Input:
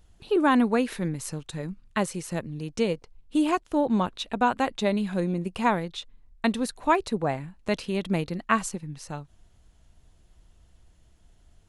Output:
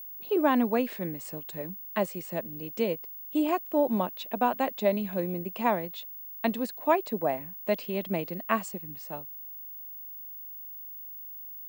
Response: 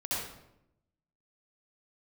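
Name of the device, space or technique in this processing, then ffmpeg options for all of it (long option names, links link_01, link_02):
old television with a line whistle: -af "highpass=frequency=180:width=0.5412,highpass=frequency=180:width=1.3066,equalizer=frequency=620:width_type=q:width=4:gain=7,equalizer=frequency=1400:width_type=q:width=4:gain=-5,equalizer=frequency=3800:width_type=q:width=4:gain=-4,equalizer=frequency=6000:width_type=q:width=4:gain=-8,lowpass=frequency=8000:width=0.5412,lowpass=frequency=8000:width=1.3066,aeval=exprs='val(0)+0.0158*sin(2*PI*15625*n/s)':channel_layout=same,volume=-3.5dB"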